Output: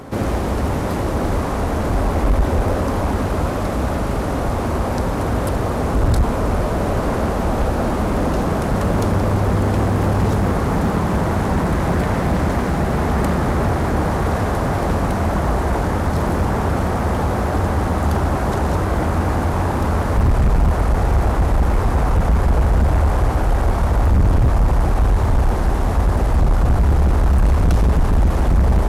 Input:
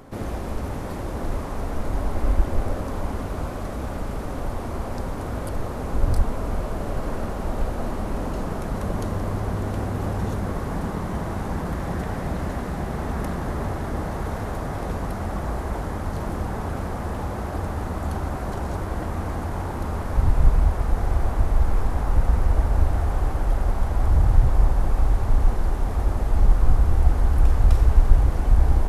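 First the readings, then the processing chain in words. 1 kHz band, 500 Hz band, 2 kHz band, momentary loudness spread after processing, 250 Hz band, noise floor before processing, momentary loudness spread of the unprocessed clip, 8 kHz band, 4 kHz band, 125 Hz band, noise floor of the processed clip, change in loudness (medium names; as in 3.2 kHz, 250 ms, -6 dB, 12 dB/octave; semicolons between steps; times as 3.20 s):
+9.5 dB, +10.0 dB, +10.0 dB, 4 LU, +10.0 dB, -30 dBFS, 10 LU, no reading, +9.5 dB, +7.0 dB, -21 dBFS, +7.0 dB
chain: high-pass 47 Hz 12 dB/octave; in parallel at -7 dB: sine folder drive 11 dB, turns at -7.5 dBFS; on the sum: loudspeaker Doppler distortion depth 0.52 ms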